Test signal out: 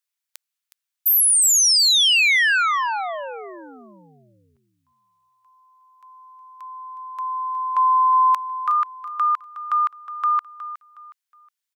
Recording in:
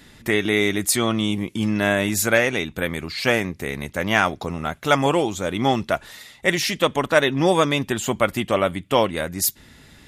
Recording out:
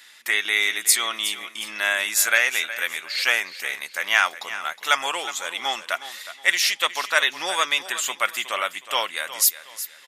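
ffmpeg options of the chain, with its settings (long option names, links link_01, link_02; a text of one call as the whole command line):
ffmpeg -i in.wav -af "highpass=1400,aecho=1:1:365|730|1095:0.211|0.0655|0.0203,volume=3.5dB" out.wav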